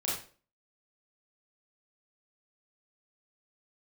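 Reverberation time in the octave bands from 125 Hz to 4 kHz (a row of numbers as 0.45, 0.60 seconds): 0.40, 0.45, 0.45, 0.35, 0.35, 0.35 seconds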